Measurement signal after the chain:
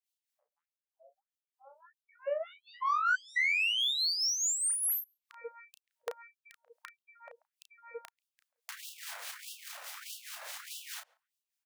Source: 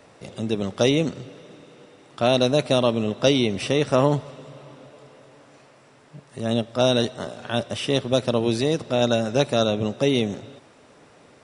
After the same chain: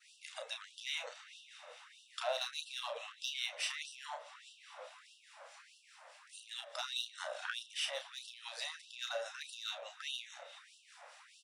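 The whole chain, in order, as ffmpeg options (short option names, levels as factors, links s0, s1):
-filter_complex "[0:a]acrossover=split=2200[s0][s1];[s0]aeval=exprs='val(0)*(1-0.7/2+0.7/2*cos(2*PI*4.8*n/s))':c=same[s2];[s1]aeval=exprs='val(0)*(1-0.7/2-0.7/2*cos(2*PI*4.8*n/s))':c=same[s3];[s2][s3]amix=inputs=2:normalize=0,asplit=2[s4][s5];[s5]adelay=137,lowpass=f=860:p=1,volume=0.0708,asplit=2[s6][s7];[s7]adelay=137,lowpass=f=860:p=1,volume=0.23[s8];[s6][s8]amix=inputs=2:normalize=0[s9];[s4][s9]amix=inputs=2:normalize=0,asubboost=boost=10.5:cutoff=85,alimiter=limit=0.158:level=0:latency=1:release=19,aeval=exprs='0.158*(cos(1*acos(clip(val(0)/0.158,-1,1)))-cos(1*PI/2))+0.00562*(cos(4*acos(clip(val(0)/0.158,-1,1)))-cos(4*PI/2))+0.00562*(cos(5*acos(clip(val(0)/0.158,-1,1)))-cos(5*PI/2))':c=same,acompressor=threshold=0.0158:ratio=2.5,adynamicequalizer=threshold=0.002:dfrequency=1700:dqfactor=1.7:tfrequency=1700:tqfactor=1.7:attack=5:release=100:ratio=0.375:range=2.5:mode=boostabove:tftype=bell,asplit=2[s10][s11];[s11]adelay=33,volume=0.473[s12];[s10][s12]amix=inputs=2:normalize=0,afftfilt=real='re*gte(b*sr/1024,470*pow(2700/470,0.5+0.5*sin(2*PI*1.6*pts/sr)))':imag='im*gte(b*sr/1024,470*pow(2700/470,0.5+0.5*sin(2*PI*1.6*pts/sr)))':win_size=1024:overlap=0.75"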